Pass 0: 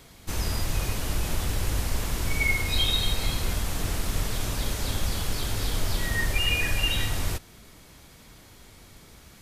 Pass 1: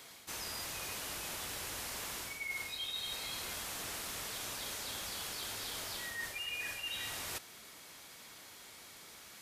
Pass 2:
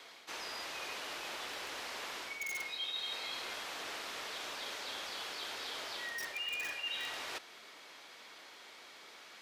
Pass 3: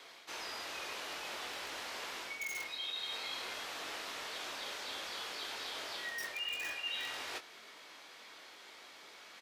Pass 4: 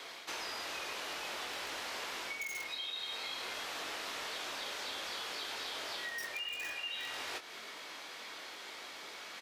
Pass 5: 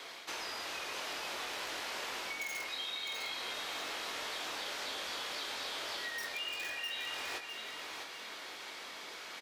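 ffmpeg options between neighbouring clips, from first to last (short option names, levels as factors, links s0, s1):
-af "highpass=f=880:p=1,areverse,acompressor=threshold=0.01:ratio=6,areverse,volume=1.12"
-filter_complex "[0:a]acrossover=split=280 5200:gain=0.112 1 0.141[s0][s1][s2];[s0][s1][s2]amix=inputs=3:normalize=0,acrossover=split=140|1200|2300[s3][s4][s5][s6];[s5]aeval=exprs='(mod(119*val(0)+1,2)-1)/119':c=same[s7];[s3][s4][s7][s6]amix=inputs=4:normalize=0,volume=1.33"
-filter_complex "[0:a]asplit=2[s0][s1];[s1]adelay=22,volume=0.447[s2];[s0][s2]amix=inputs=2:normalize=0,volume=0.891"
-af "acompressor=threshold=0.00562:ratio=6,volume=2.24"
-af "aecho=1:1:655|1310|1965|2620:0.473|0.156|0.0515|0.017"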